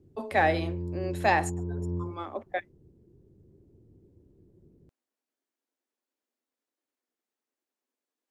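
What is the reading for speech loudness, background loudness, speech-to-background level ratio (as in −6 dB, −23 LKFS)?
−29.5 LKFS, −35.5 LKFS, 6.0 dB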